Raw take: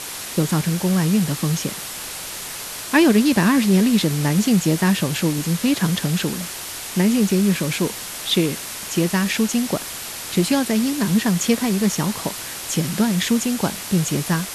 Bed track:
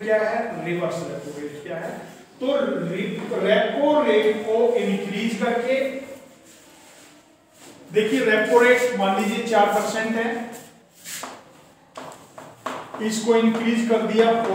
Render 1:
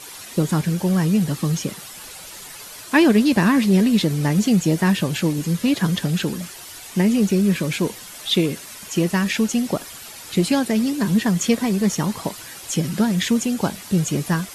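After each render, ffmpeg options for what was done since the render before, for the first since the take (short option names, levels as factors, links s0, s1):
-af "afftdn=nr=10:nf=-32"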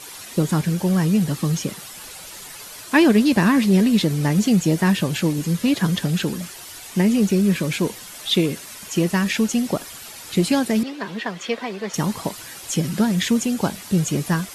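-filter_complex "[0:a]asettb=1/sr,asplit=3[s0][s1][s2];[s0]atrim=end=10.834[s3];[s1]atrim=start=10.83:end=11.94,asetpts=PTS-STARTPTS,afade=t=in:d=0.004:c=qsin,afade=t=out:st=1.106:d=0.004:c=qsin,acrossover=split=380 4400:gain=0.126 1 0.0891[s4][s5][s6];[s4][s5][s6]amix=inputs=3:normalize=0[s7];[s2]atrim=start=11.936[s8];[s3][s7]acrossfade=d=0.004:c1=hsin:c2=qsin[s9];[s9][s8]acrossfade=d=0.004:c1=qsin:c2=hsin"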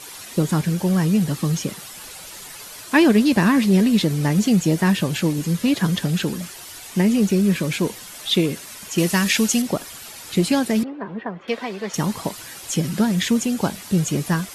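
-filter_complex "[0:a]asettb=1/sr,asplit=3[s0][s1][s2];[s0]atrim=end=8.984[s3];[s1]atrim=start=8.98:end=9.62,asetpts=PTS-STARTPTS,afade=t=in:d=0.004:c=qsin,afade=t=out:st=0.636:d=0.004:c=qsin,highshelf=f=2400:g=8.5[s4];[s2]atrim=start=9.616[s5];[s3][s4]acrossfade=d=0.004:c1=hsin:c2=qsin[s6];[s6][s5]acrossfade=d=0.004:c1=qsin:c2=hsin,asettb=1/sr,asplit=3[s7][s8][s9];[s7]atrim=end=10.844[s10];[s8]atrim=start=10.84:end=11.48,asetpts=PTS-STARTPTS,afade=t=in:d=0.004:c=qsin,afade=t=out:st=0.636:d=0.004:c=qsin,lowpass=1200[s11];[s9]atrim=start=11.476[s12];[s10][s11]acrossfade=d=0.004:c1=hsin:c2=qsin[s13];[s13][s12]acrossfade=d=0.004:c1=qsin:c2=hsin"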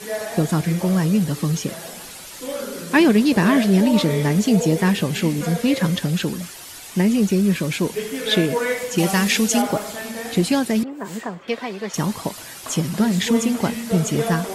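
-filter_complex "[1:a]volume=0.422[s0];[0:a][s0]amix=inputs=2:normalize=0"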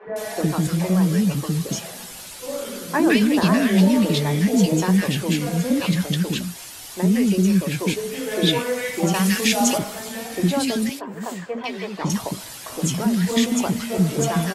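-filter_complex "[0:a]asplit=2[s0][s1];[s1]adelay=16,volume=0.266[s2];[s0][s2]amix=inputs=2:normalize=0,acrossover=split=360|1600[s3][s4][s5];[s3]adelay=60[s6];[s5]adelay=160[s7];[s6][s4][s7]amix=inputs=3:normalize=0"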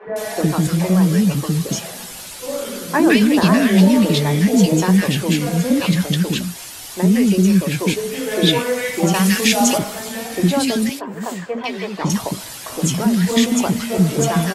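-af "volume=1.58,alimiter=limit=0.794:level=0:latency=1"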